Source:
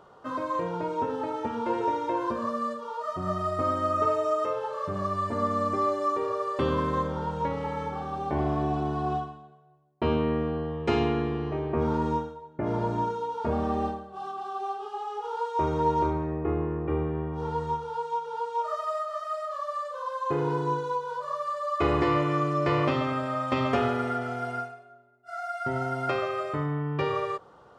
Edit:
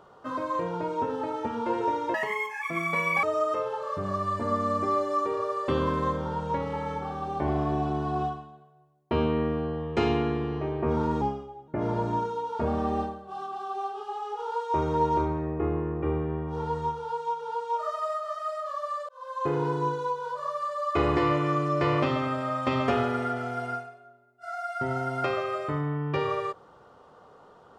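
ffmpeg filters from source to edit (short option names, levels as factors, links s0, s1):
-filter_complex "[0:a]asplit=6[s0][s1][s2][s3][s4][s5];[s0]atrim=end=2.144[s6];[s1]atrim=start=2.14:end=4.14,asetpts=PTS-STARTPTS,asetrate=80703,aresample=44100[s7];[s2]atrim=start=4.136:end=12.124[s8];[s3]atrim=start=12.12:end=12.53,asetpts=PTS-STARTPTS,asetrate=38808,aresample=44100[s9];[s4]atrim=start=12.526:end=19.94,asetpts=PTS-STARTPTS,afade=t=out:st=7.41:d=0.004:c=hsin[s10];[s5]atrim=start=19.94,asetpts=PTS-STARTPTS,afade=t=in:d=0.36[s11];[s6][s7]acrossfade=d=0.004:c1=hsin:c2=hsin[s12];[s12][s8]acrossfade=d=0.004:c1=hsin:c2=hsin[s13];[s13][s9]acrossfade=d=0.004:c1=hsin:c2=hsin[s14];[s10][s11]concat=n=2:v=0:a=1[s15];[s14][s15]acrossfade=d=0.004:c1=hsin:c2=hsin"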